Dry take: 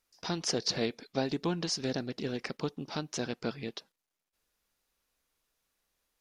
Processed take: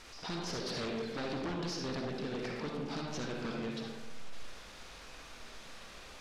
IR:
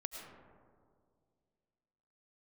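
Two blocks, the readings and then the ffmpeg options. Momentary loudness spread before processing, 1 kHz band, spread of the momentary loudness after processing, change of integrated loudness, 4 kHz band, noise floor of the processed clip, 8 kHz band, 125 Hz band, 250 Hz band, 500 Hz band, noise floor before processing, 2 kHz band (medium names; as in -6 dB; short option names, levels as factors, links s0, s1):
8 LU, -1.0 dB, 13 LU, -5.5 dB, -5.5 dB, -51 dBFS, -9.0 dB, -3.0 dB, -3.0 dB, -3.5 dB, under -85 dBFS, -1.0 dB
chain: -filter_complex "[0:a]aeval=exprs='val(0)+0.5*0.0126*sgn(val(0))':c=same[s0];[1:a]atrim=start_sample=2205,asetrate=83790,aresample=44100[s1];[s0][s1]afir=irnorm=-1:irlink=0,aeval=exprs='0.0178*(abs(mod(val(0)/0.0178+3,4)-2)-1)':c=same,lowpass=5200,volume=1.5"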